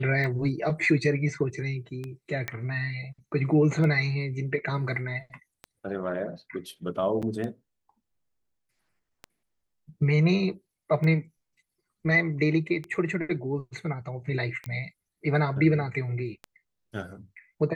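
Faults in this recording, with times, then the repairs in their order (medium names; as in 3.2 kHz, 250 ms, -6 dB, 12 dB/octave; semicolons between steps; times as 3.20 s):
tick 33 1/3 rpm -22 dBFS
2.48 s: pop -15 dBFS
7.22–7.23 s: dropout 6.9 ms
14.66 s: pop -23 dBFS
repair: de-click; interpolate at 7.22 s, 6.9 ms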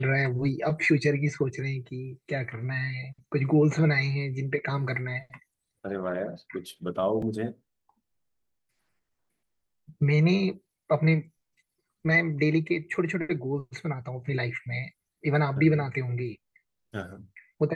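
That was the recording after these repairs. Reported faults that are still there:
nothing left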